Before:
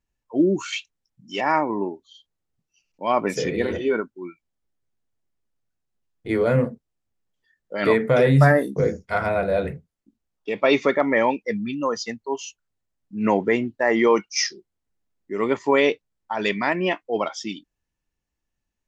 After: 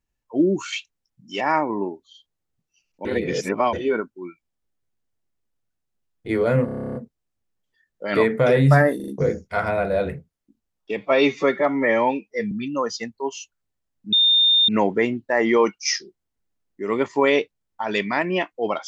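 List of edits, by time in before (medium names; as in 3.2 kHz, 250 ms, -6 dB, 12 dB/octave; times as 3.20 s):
3.05–3.73 s: reverse
6.65 s: stutter 0.03 s, 11 plays
8.66 s: stutter 0.04 s, 4 plays
10.55–11.58 s: stretch 1.5×
13.19 s: add tone 3.63 kHz -13 dBFS 0.56 s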